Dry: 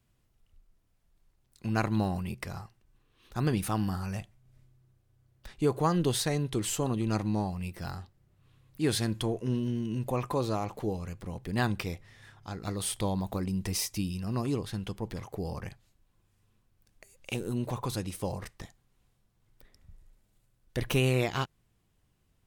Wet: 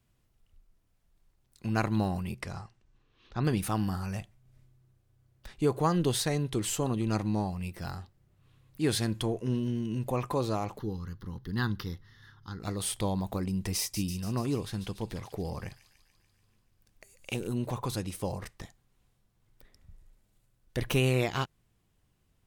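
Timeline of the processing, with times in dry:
0:02.40–0:03.43: low-pass filter 11,000 Hz → 4,900 Hz 24 dB per octave
0:10.78–0:12.60: phaser with its sweep stopped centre 2,400 Hz, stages 6
0:13.79–0:17.47: delay with a high-pass on its return 145 ms, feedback 64%, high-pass 2,900 Hz, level −8.5 dB

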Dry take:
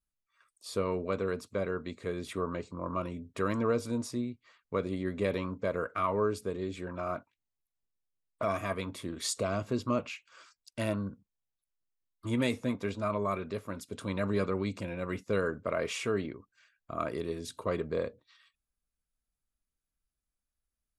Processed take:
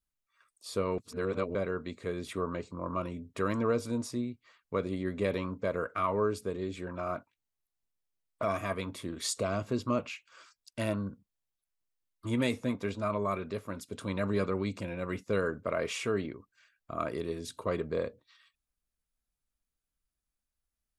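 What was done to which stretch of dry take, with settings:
0:00.98–0:01.55: reverse

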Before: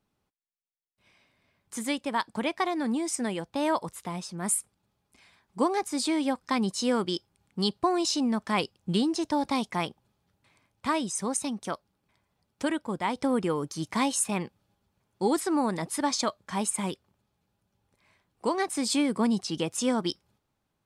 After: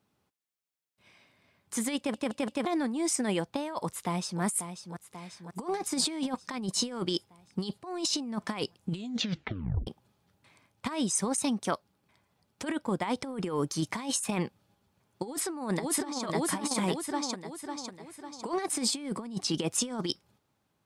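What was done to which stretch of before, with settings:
0:01.97: stutter in place 0.17 s, 4 plays
0:03.81–0:04.42: delay throw 540 ms, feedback 65%, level −9.5 dB
0:08.90: tape stop 0.97 s
0:15.24–0:16.24: delay throw 550 ms, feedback 50%, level −3.5 dB
whole clip: high-pass filter 77 Hz; compressor whose output falls as the input rises −30 dBFS, ratio −0.5

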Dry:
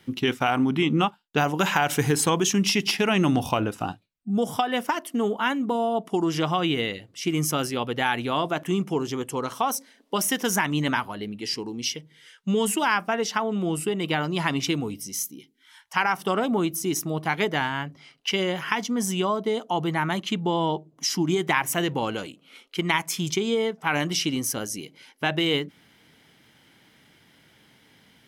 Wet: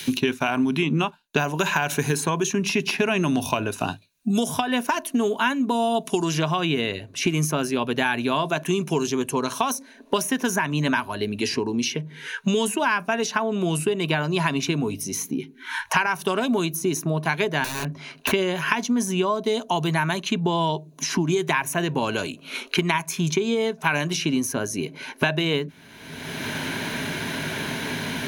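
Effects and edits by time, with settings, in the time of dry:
0:17.64–0:18.33: wrap-around overflow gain 27.5 dB
whole clip: EQ curve with evenly spaced ripples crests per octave 1.5, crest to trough 8 dB; multiband upward and downward compressor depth 100%

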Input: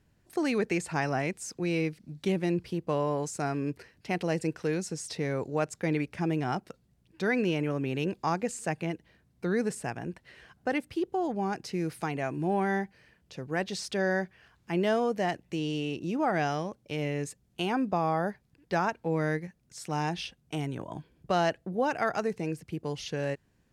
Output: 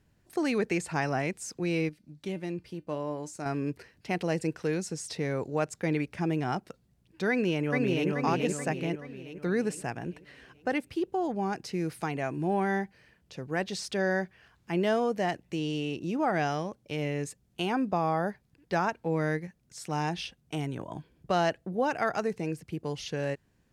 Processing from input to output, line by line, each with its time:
0:01.89–0:03.46: tuned comb filter 300 Hz, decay 0.16 s
0:07.29–0:08.09: delay throw 430 ms, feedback 50%, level −1.5 dB

